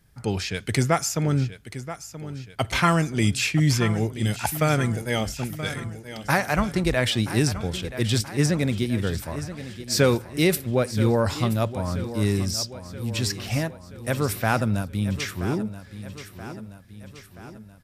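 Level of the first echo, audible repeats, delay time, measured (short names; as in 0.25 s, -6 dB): -13.0 dB, 5, 0.978 s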